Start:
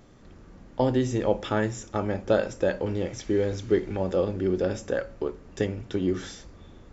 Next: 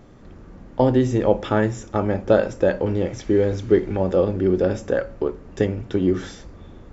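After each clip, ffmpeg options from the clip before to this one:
ffmpeg -i in.wav -af "highshelf=frequency=2500:gain=-8,volume=6.5dB" out.wav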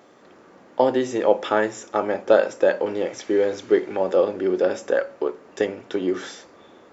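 ffmpeg -i in.wav -af "highpass=430,volume=2.5dB" out.wav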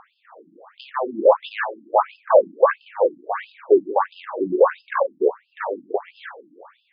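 ffmpeg -i in.wav -af "aeval=exprs='(tanh(8.91*val(0)+0.7)-tanh(0.7))/8.91':channel_layout=same,equalizer=frequency=250:width_type=o:width=1:gain=-4,equalizer=frequency=500:width_type=o:width=1:gain=6,equalizer=frequency=1000:width_type=o:width=1:gain=10,equalizer=frequency=4000:width_type=o:width=1:gain=-7,afftfilt=real='re*between(b*sr/1024,230*pow(3700/230,0.5+0.5*sin(2*PI*1.5*pts/sr))/1.41,230*pow(3700/230,0.5+0.5*sin(2*PI*1.5*pts/sr))*1.41)':imag='im*between(b*sr/1024,230*pow(3700/230,0.5+0.5*sin(2*PI*1.5*pts/sr))/1.41,230*pow(3700/230,0.5+0.5*sin(2*PI*1.5*pts/sr))*1.41)':win_size=1024:overlap=0.75,volume=7.5dB" out.wav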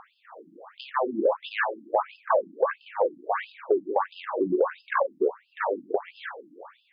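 ffmpeg -i in.wav -af "acompressor=threshold=-20dB:ratio=6" out.wav

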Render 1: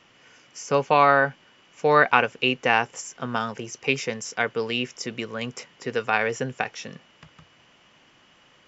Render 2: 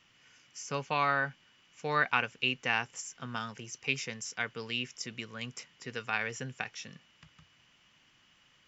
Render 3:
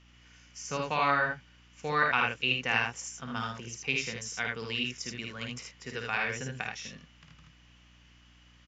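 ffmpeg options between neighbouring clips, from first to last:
ffmpeg -i in.wav -af "equalizer=frequency=520:width_type=o:width=2.4:gain=-11,volume=-5dB" out.wav
ffmpeg -i in.wav -af "aecho=1:1:53|78:0.531|0.708,aeval=exprs='val(0)+0.00112*(sin(2*PI*60*n/s)+sin(2*PI*2*60*n/s)/2+sin(2*PI*3*60*n/s)/3+sin(2*PI*4*60*n/s)/4+sin(2*PI*5*60*n/s)/5)':channel_layout=same,aresample=16000,aresample=44100" out.wav

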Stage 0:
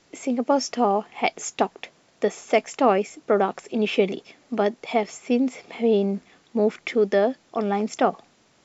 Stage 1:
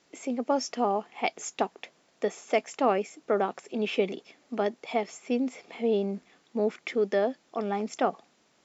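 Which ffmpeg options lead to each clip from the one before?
ffmpeg -i in.wav -af "highpass=49,equalizer=frequency=96:width_type=o:width=0.95:gain=-11,volume=-5.5dB" out.wav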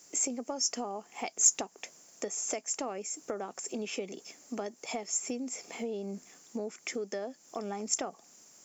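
ffmpeg -i in.wav -af "acompressor=threshold=-34dB:ratio=6,aexciter=amount=6.7:drive=8.1:freq=5500" out.wav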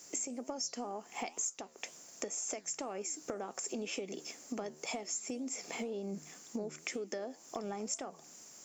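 ffmpeg -i in.wav -af "acompressor=threshold=-39dB:ratio=6,flanger=delay=7.2:depth=6.2:regen=89:speed=2:shape=sinusoidal,volume=7.5dB" out.wav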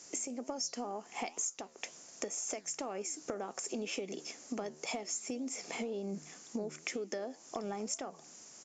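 ffmpeg -i in.wav -af "aresample=16000,aresample=44100,volume=1dB" out.wav

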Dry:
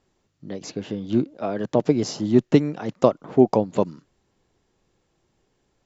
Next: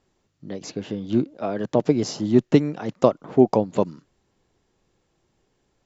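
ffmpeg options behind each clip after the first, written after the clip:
ffmpeg -i in.wav -af anull out.wav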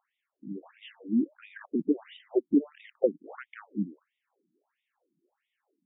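ffmpeg -i in.wav -af "equalizer=frequency=4900:width_type=o:width=0.72:gain=-4.5,acontrast=88,afftfilt=real='re*between(b*sr/1024,230*pow(2700/230,0.5+0.5*sin(2*PI*1.5*pts/sr))/1.41,230*pow(2700/230,0.5+0.5*sin(2*PI*1.5*pts/sr))*1.41)':imag='im*between(b*sr/1024,230*pow(2700/230,0.5+0.5*sin(2*PI*1.5*pts/sr))/1.41,230*pow(2700/230,0.5+0.5*sin(2*PI*1.5*pts/sr))*1.41)':win_size=1024:overlap=0.75,volume=-8.5dB" out.wav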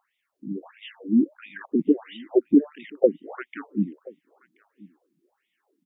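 ffmpeg -i in.wav -af "aecho=1:1:1030:0.0668,volume=6.5dB" out.wav

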